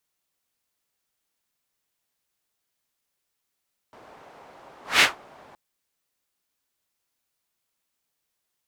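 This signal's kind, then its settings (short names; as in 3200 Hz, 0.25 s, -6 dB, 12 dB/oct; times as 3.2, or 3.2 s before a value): whoosh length 1.62 s, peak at 1.08, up 0.19 s, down 0.17 s, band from 770 Hz, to 2500 Hz, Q 1.3, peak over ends 33.5 dB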